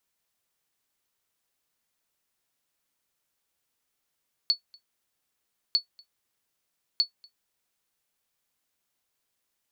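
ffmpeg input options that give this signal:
ffmpeg -f lavfi -i "aevalsrc='0.211*(sin(2*PI*4430*mod(t,1.25))*exp(-6.91*mod(t,1.25)/0.11)+0.0398*sin(2*PI*4430*max(mod(t,1.25)-0.24,0))*exp(-6.91*max(mod(t,1.25)-0.24,0)/0.11))':duration=3.75:sample_rate=44100" out.wav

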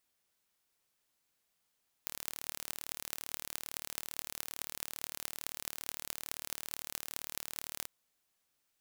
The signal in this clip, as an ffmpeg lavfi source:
ffmpeg -f lavfi -i "aevalsrc='0.398*eq(mod(n,1170),0)*(0.5+0.5*eq(mod(n,9360),0))':duration=5.81:sample_rate=44100" out.wav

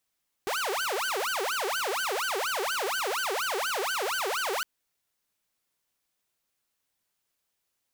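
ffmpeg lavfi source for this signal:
ffmpeg -f lavfi -i "aevalsrc='0.0562*(2*mod((963*t-587/(2*PI*4.2)*sin(2*PI*4.2*t)),1)-1)':duration=4.16:sample_rate=44100" out.wav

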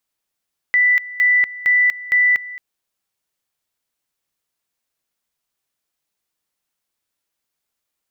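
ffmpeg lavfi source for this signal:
ffmpeg -f lavfi -i "aevalsrc='pow(10,(-11-18*gte(mod(t,0.46),0.24))/20)*sin(2*PI*1980*t)':duration=1.84:sample_rate=44100" out.wav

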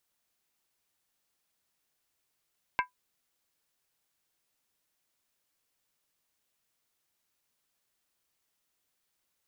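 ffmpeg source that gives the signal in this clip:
ffmpeg -f lavfi -i "aevalsrc='0.0841*pow(10,-3*t/0.13)*sin(2*PI*997*t)+0.0596*pow(10,-3*t/0.103)*sin(2*PI*1589.2*t)+0.0422*pow(10,-3*t/0.089)*sin(2*PI*2129.6*t)+0.0299*pow(10,-3*t/0.086)*sin(2*PI*2289.1*t)+0.0211*pow(10,-3*t/0.08)*sin(2*PI*2645*t)':duration=0.63:sample_rate=44100" out.wav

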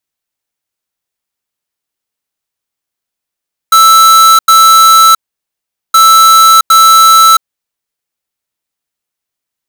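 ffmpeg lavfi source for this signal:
ffmpeg -f lavfi -i "aevalsrc='0.668*(2*lt(mod(1320*t,1),0.5)-1)*clip(min(mod(mod(t,2.22),0.76),0.67-mod(mod(t,2.22),0.76))/0.005,0,1)*lt(mod(t,2.22),1.52)':duration=4.44:sample_rate=44100" out.wav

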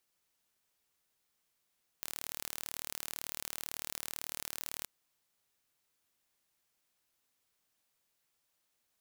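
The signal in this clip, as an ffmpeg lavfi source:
ffmpeg -f lavfi -i "aevalsrc='0.251*eq(mod(n,1161),0)':duration=2.83:sample_rate=44100" out.wav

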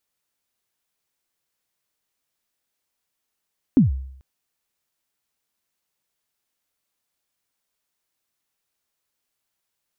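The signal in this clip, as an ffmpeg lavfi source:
ffmpeg -f lavfi -i "aevalsrc='0.398*pow(10,-3*t/0.69)*sin(2*PI*(300*0.139/log(66/300)*(exp(log(66/300)*min(t,0.139)/0.139)-1)+66*max(t-0.139,0)))':duration=0.44:sample_rate=44100" out.wav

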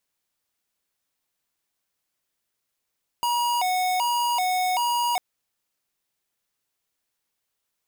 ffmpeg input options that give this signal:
ffmpeg -f lavfi -i "aevalsrc='0.0668*(2*lt(mod((846.5*t+110.5/1.3*(0.5-abs(mod(1.3*t,1)-0.5))),1),0.5)-1)':duration=1.95:sample_rate=44100" out.wav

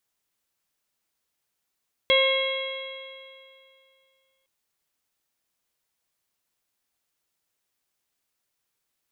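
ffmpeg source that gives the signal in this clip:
ffmpeg -f lavfi -i "aevalsrc='0.112*pow(10,-3*t/2.44)*sin(2*PI*531.53*t)+0.0355*pow(10,-3*t/2.44)*sin(2*PI*1066.24*t)+0.0119*pow(10,-3*t/2.44)*sin(2*PI*1607.27*t)+0.0891*pow(10,-3*t/2.44)*sin(2*PI*2157.72*t)+0.0266*pow(10,-3*t/2.44)*sin(2*PI*2720.57*t)+0.1*pow(10,-3*t/2.44)*sin(2*PI*3298.7*t)+0.0158*pow(10,-3*t/2.44)*sin(2*PI*3894.88*t)':duration=2.36:sample_rate=44100" out.wav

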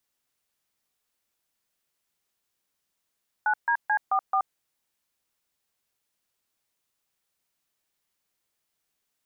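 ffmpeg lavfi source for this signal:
ffmpeg -f lavfi -i "aevalsrc='0.0708*clip(min(mod(t,0.218),0.077-mod(t,0.218))/0.002,0,1)*(eq(floor(t/0.218),0)*(sin(2*PI*852*mod(t,0.218))+sin(2*PI*1477*mod(t,0.218)))+eq(floor(t/0.218),1)*(sin(2*PI*941*mod(t,0.218))+sin(2*PI*1633*mod(t,0.218)))+eq(floor(t/0.218),2)*(sin(2*PI*852*mod(t,0.218))+sin(2*PI*1633*mod(t,0.218)))+eq(floor(t/0.218),3)*(sin(2*PI*770*mod(t,0.218))+sin(2*PI*1209*mod(t,0.218)))+eq(floor(t/0.218),4)*(sin(2*PI*770*mod(t,0.218))+sin(2*PI*1209*mod(t,0.218))))':duration=1.09:sample_rate=44100" out.wav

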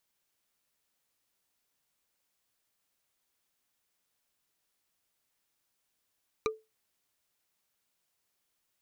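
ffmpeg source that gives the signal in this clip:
ffmpeg -f lavfi -i "aevalsrc='0.0631*pow(10,-3*t/0.23)*sin(2*PI*438*t)+0.0501*pow(10,-3*t/0.068)*sin(2*PI*1207.6*t)+0.0398*pow(10,-3*t/0.03)*sin(2*PI*2367*t)+0.0316*pow(10,-3*t/0.017)*sin(2*PI*3912.7*t)+0.0251*pow(10,-3*t/0.01)*sin(2*PI*5842.9*t)':duration=0.45:sample_rate=44100" out.wav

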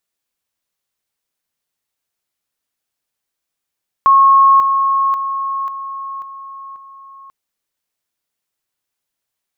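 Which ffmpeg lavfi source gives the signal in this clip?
ffmpeg -f lavfi -i "aevalsrc='pow(10,(-5.5-6*floor(t/0.54))/20)*sin(2*PI*1090*t)':duration=3.24:sample_rate=44100" out.wav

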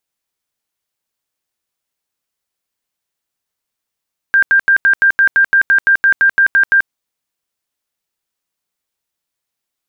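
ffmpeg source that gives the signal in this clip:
ffmpeg -f lavfi -i "aevalsrc='0.473*sin(2*PI*1590*mod(t,0.17))*lt(mod(t,0.17),136/1590)':duration=2.55:sample_rate=44100" out.wav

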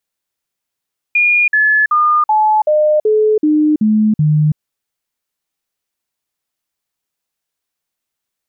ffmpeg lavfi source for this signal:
ffmpeg -f lavfi -i "aevalsrc='0.376*clip(min(mod(t,0.38),0.33-mod(t,0.38))/0.005,0,1)*sin(2*PI*2430*pow(2,-floor(t/0.38)/2)*mod(t,0.38))':duration=3.42:sample_rate=44100" out.wav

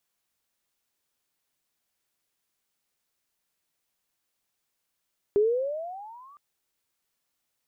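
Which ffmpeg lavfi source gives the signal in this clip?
ffmpeg -f lavfi -i "aevalsrc='pow(10,(-17-32*t/1.01)/20)*sin(2*PI*400*1.01/(19*log(2)/12)*(exp(19*log(2)/12*t/1.01)-1))':duration=1.01:sample_rate=44100" out.wav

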